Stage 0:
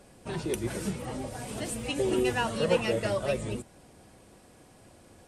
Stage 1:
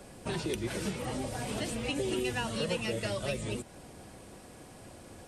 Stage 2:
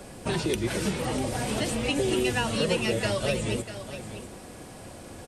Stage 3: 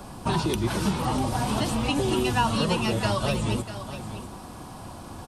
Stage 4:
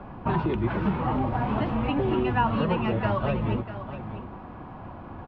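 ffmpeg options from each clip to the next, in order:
ffmpeg -i in.wav -filter_complex "[0:a]acrossover=split=300|2300|5200[link_01][link_02][link_03][link_04];[link_01]acompressor=threshold=-42dB:ratio=4[link_05];[link_02]acompressor=threshold=-42dB:ratio=4[link_06];[link_03]acompressor=threshold=-44dB:ratio=4[link_07];[link_04]acompressor=threshold=-53dB:ratio=4[link_08];[link_05][link_06][link_07][link_08]amix=inputs=4:normalize=0,volume=5dB" out.wav
ffmpeg -i in.wav -af "aecho=1:1:645:0.266,volume=6.5dB" out.wav
ffmpeg -i in.wav -af "equalizer=frequency=500:width_type=o:width=1:gain=-10,equalizer=frequency=1000:width_type=o:width=1:gain=9,equalizer=frequency=2000:width_type=o:width=1:gain=-10,equalizer=frequency=8000:width_type=o:width=1:gain=-7,volume=5dB" out.wav
ffmpeg -i in.wav -af "lowpass=frequency=2300:width=0.5412,lowpass=frequency=2300:width=1.3066" out.wav

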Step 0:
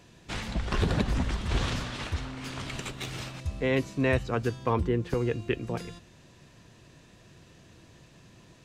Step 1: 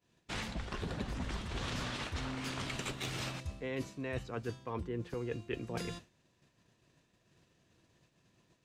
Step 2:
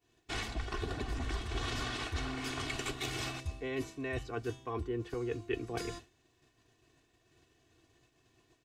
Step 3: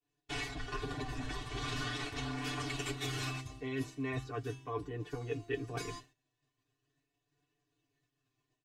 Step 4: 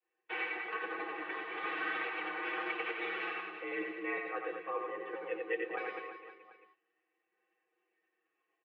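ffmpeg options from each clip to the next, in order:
ffmpeg -i in.wav -af "agate=range=-33dB:threshold=-42dB:ratio=3:detection=peak,lowshelf=frequency=100:gain=-6,areverse,acompressor=threshold=-38dB:ratio=12,areverse,volume=3dB" out.wav
ffmpeg -i in.wav -af "aecho=1:1:2.7:0.75" out.wav
ffmpeg -i in.wav -af "agate=range=-13dB:threshold=-59dB:ratio=16:detection=peak,flanger=delay=6.8:depth=1.2:regen=37:speed=0.4:shape=triangular,aecho=1:1:6.8:0.97" out.wav
ffmpeg -i in.wav -filter_complex "[0:a]crystalizer=i=6.5:c=0,asplit=2[link_01][link_02];[link_02]aecho=0:1:90|202.5|343.1|518.9|738.6:0.631|0.398|0.251|0.158|0.1[link_03];[link_01][link_03]amix=inputs=2:normalize=0,highpass=frequency=280:width_type=q:width=0.5412,highpass=frequency=280:width_type=q:width=1.307,lowpass=frequency=2300:width_type=q:width=0.5176,lowpass=frequency=2300:width_type=q:width=0.7071,lowpass=frequency=2300:width_type=q:width=1.932,afreqshift=53,volume=-1dB" out.wav

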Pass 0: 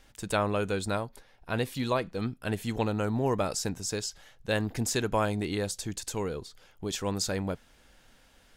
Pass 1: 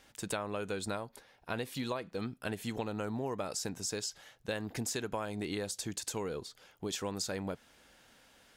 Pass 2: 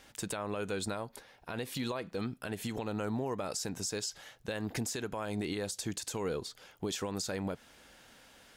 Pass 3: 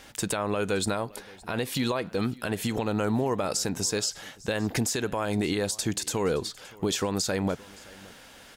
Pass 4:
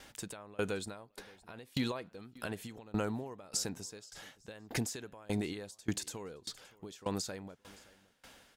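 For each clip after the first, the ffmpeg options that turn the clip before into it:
ffmpeg -i in.wav -af "highpass=frequency=170:poles=1,acompressor=threshold=-33dB:ratio=6" out.wav
ffmpeg -i in.wav -af "alimiter=level_in=6dB:limit=-24dB:level=0:latency=1:release=95,volume=-6dB,volume=4dB" out.wav
ffmpeg -i in.wav -af "aecho=1:1:570:0.075,volume=8.5dB" out.wav
ffmpeg -i in.wav -af "aeval=exprs='val(0)*pow(10,-25*if(lt(mod(1.7*n/s,1),2*abs(1.7)/1000),1-mod(1.7*n/s,1)/(2*abs(1.7)/1000),(mod(1.7*n/s,1)-2*abs(1.7)/1000)/(1-2*abs(1.7)/1000))/20)':channel_layout=same,volume=-3.5dB" out.wav

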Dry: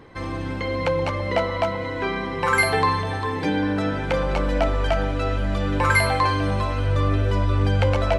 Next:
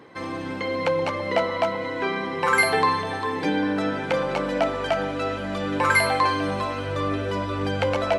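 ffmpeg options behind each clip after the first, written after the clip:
ffmpeg -i in.wav -af "highpass=180" out.wav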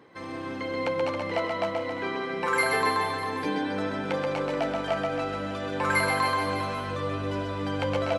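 ffmpeg -i in.wav -af "aecho=1:1:130|273|430.3|603.3|793.7:0.631|0.398|0.251|0.158|0.1,volume=-6.5dB" out.wav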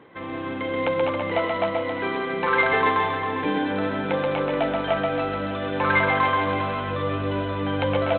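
ffmpeg -i in.wav -af "volume=4.5dB" -ar 8000 -c:a adpcm_ima_wav out.wav

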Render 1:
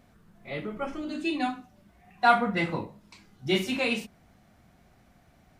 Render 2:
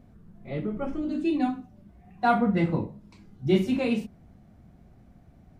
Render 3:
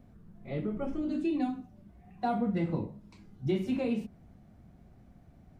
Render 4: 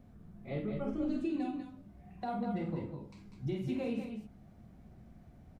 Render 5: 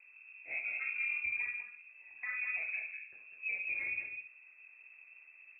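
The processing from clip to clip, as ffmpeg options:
ffmpeg -i in.wav -af "tiltshelf=frequency=630:gain=8.5" out.wav
ffmpeg -i in.wav -filter_complex "[0:a]acrossover=split=830|2500[link_01][link_02][link_03];[link_01]acompressor=threshold=-24dB:ratio=4[link_04];[link_02]acompressor=threshold=-47dB:ratio=4[link_05];[link_03]acompressor=threshold=-50dB:ratio=4[link_06];[link_04][link_05][link_06]amix=inputs=3:normalize=0,volume=-2.5dB" out.wav
ffmpeg -i in.wav -af "alimiter=level_in=3dB:limit=-24dB:level=0:latency=1:release=467,volume=-3dB,aecho=1:1:49|195|209:0.447|0.398|0.398,volume=-1.5dB" out.wav
ffmpeg -i in.wav -af "tremolo=f=200:d=0.519,lowpass=frequency=2300:width_type=q:width=0.5098,lowpass=frequency=2300:width_type=q:width=0.6013,lowpass=frequency=2300:width_type=q:width=0.9,lowpass=frequency=2300:width_type=q:width=2.563,afreqshift=-2700" out.wav

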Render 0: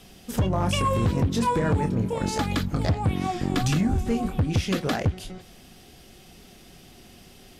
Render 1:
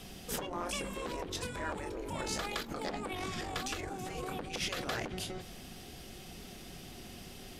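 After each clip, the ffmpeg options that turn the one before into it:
ffmpeg -i in.wav -af "alimiter=level_in=1dB:limit=-24dB:level=0:latency=1:release=18,volume=-1dB,afftfilt=real='re*lt(hypot(re,im),0.1)':imag='im*lt(hypot(re,im),0.1)':win_size=1024:overlap=0.75,volume=1dB" out.wav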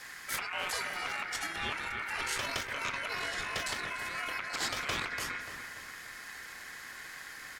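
ffmpeg -i in.wav -filter_complex "[0:a]aeval=exprs='val(0)*sin(2*PI*1800*n/s)':channel_layout=same,asplit=2[link_01][link_02];[link_02]adelay=292,lowpass=frequency=1900:poles=1,volume=-6dB,asplit=2[link_03][link_04];[link_04]adelay=292,lowpass=frequency=1900:poles=1,volume=0.49,asplit=2[link_05][link_06];[link_06]adelay=292,lowpass=frequency=1900:poles=1,volume=0.49,asplit=2[link_07][link_08];[link_08]adelay=292,lowpass=frequency=1900:poles=1,volume=0.49,asplit=2[link_09][link_10];[link_10]adelay=292,lowpass=frequency=1900:poles=1,volume=0.49,asplit=2[link_11][link_12];[link_12]adelay=292,lowpass=frequency=1900:poles=1,volume=0.49[link_13];[link_03][link_05][link_07][link_09][link_11][link_13]amix=inputs=6:normalize=0[link_14];[link_01][link_14]amix=inputs=2:normalize=0,volume=4.5dB" out.wav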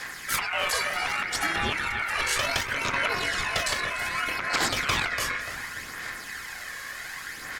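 ffmpeg -i in.wav -af "aphaser=in_gain=1:out_gain=1:delay=1.8:decay=0.41:speed=0.66:type=sinusoidal,volume=7.5dB" out.wav

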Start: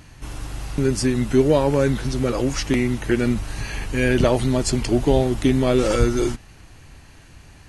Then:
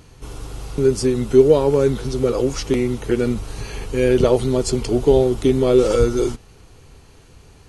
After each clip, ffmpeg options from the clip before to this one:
ffmpeg -i in.wav -af "superequalizer=7b=2.51:11b=0.501:12b=0.708,volume=-1dB" out.wav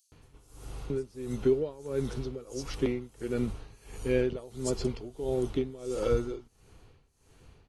ffmpeg -i in.wav -filter_complex "[0:a]alimiter=limit=-7dB:level=0:latency=1:release=393,tremolo=f=1.5:d=0.9,acrossover=split=5100[link_01][link_02];[link_01]adelay=120[link_03];[link_03][link_02]amix=inputs=2:normalize=0,volume=-8.5dB" out.wav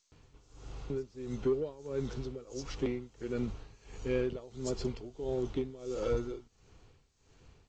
ffmpeg -i in.wav -af "asoftclip=type=tanh:threshold=-17.5dB,volume=-3.5dB" -ar 16000 -c:a g722 out.g722

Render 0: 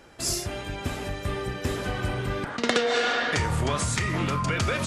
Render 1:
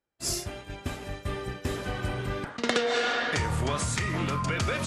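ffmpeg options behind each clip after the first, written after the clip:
ffmpeg -i in.wav -af "agate=range=-33dB:threshold=-28dB:ratio=3:detection=peak,volume=-2.5dB" out.wav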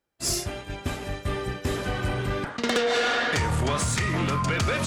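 ffmpeg -i in.wav -af "asoftclip=type=tanh:threshold=-22dB,volume=5dB" out.wav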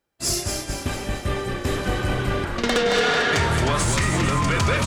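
ffmpeg -i in.wav -filter_complex "[0:a]asplit=8[link_01][link_02][link_03][link_04][link_05][link_06][link_07][link_08];[link_02]adelay=223,afreqshift=-38,volume=-6dB[link_09];[link_03]adelay=446,afreqshift=-76,volume=-11.4dB[link_10];[link_04]adelay=669,afreqshift=-114,volume=-16.7dB[link_11];[link_05]adelay=892,afreqshift=-152,volume=-22.1dB[link_12];[link_06]adelay=1115,afreqshift=-190,volume=-27.4dB[link_13];[link_07]adelay=1338,afreqshift=-228,volume=-32.8dB[link_14];[link_08]adelay=1561,afreqshift=-266,volume=-38.1dB[link_15];[link_01][link_09][link_10][link_11][link_12][link_13][link_14][link_15]amix=inputs=8:normalize=0,volume=3dB" out.wav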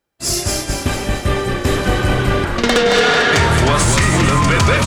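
ffmpeg -i in.wav -af "dynaudnorm=framelen=230:gausssize=3:maxgain=6dB,volume=2dB" out.wav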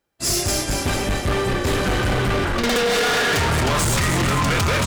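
ffmpeg -i in.wav -af "asoftclip=type=hard:threshold=-17.5dB" out.wav

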